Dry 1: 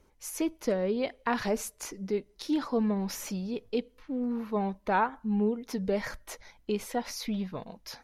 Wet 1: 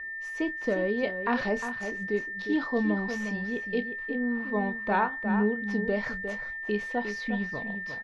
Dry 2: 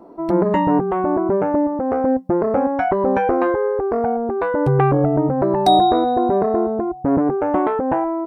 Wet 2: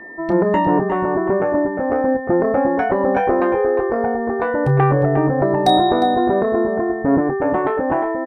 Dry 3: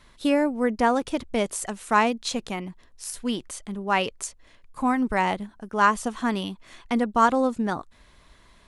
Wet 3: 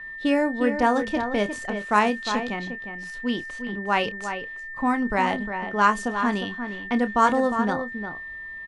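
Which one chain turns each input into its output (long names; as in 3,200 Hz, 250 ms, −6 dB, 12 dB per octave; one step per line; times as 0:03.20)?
slap from a distant wall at 61 metres, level −8 dB
steady tone 1,800 Hz −35 dBFS
low-pass that shuts in the quiet parts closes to 2,400 Hz, open at −14 dBFS
double-tracking delay 29 ms −12 dB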